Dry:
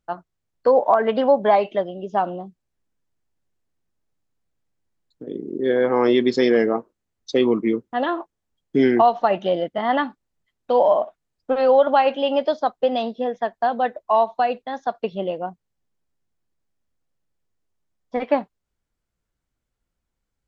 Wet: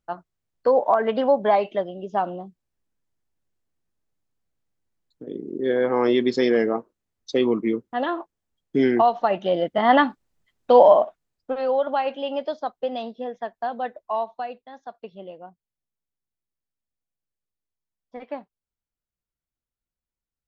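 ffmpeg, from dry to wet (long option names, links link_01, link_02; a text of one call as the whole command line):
ffmpeg -i in.wav -af "volume=4.5dB,afade=type=in:start_time=9.44:duration=0.48:silence=0.446684,afade=type=out:start_time=10.77:duration=0.79:silence=0.266073,afade=type=out:start_time=14.02:duration=0.61:silence=0.473151" out.wav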